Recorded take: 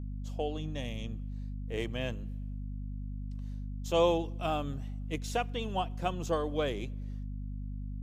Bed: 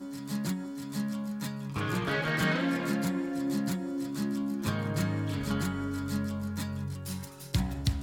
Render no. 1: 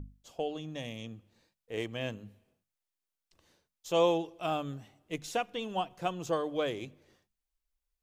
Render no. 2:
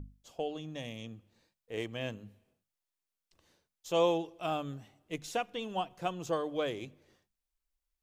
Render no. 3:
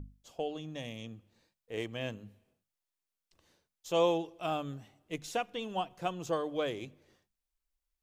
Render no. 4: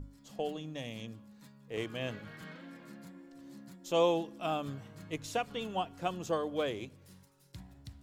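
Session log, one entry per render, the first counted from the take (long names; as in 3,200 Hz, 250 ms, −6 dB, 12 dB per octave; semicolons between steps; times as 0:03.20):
mains-hum notches 50/100/150/200/250 Hz
level −1.5 dB
no processing that can be heard
mix in bed −20.5 dB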